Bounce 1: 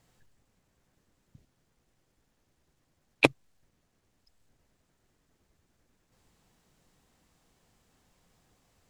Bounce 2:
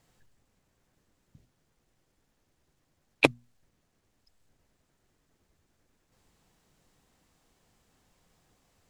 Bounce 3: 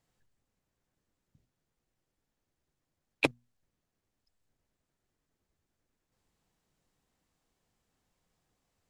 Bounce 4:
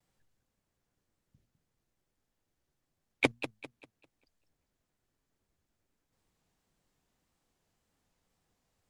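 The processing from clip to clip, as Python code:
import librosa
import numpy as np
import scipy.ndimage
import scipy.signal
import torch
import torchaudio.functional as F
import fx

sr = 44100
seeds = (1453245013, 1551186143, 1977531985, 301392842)

y1 = fx.hum_notches(x, sr, base_hz=60, count=4)
y2 = fx.leveller(y1, sr, passes=1)
y2 = y2 * 10.0 ** (-8.5 / 20.0)
y3 = fx.wow_flutter(y2, sr, seeds[0], rate_hz=2.1, depth_cents=110.0)
y3 = fx.echo_warbled(y3, sr, ms=198, feedback_pct=33, rate_hz=2.8, cents=196, wet_db=-11)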